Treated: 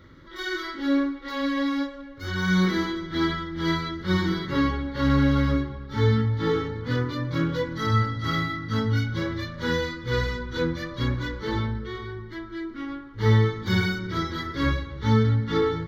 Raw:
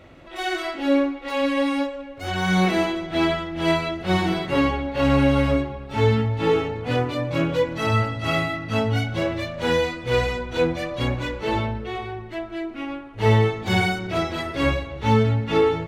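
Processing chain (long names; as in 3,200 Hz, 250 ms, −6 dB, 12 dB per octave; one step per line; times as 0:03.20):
phaser with its sweep stopped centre 2,600 Hz, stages 6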